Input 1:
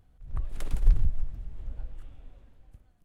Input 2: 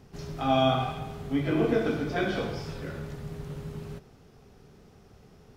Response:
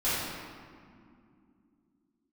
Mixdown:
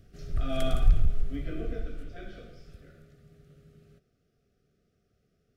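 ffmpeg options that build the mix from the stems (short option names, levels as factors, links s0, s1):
-filter_complex "[0:a]volume=1.33[s0];[1:a]volume=0.398,afade=t=out:st=1.12:d=0.77:silence=0.316228[s1];[s0][s1]amix=inputs=2:normalize=0,asoftclip=type=tanh:threshold=0.299,asuperstop=centerf=930:order=12:qfactor=2.2"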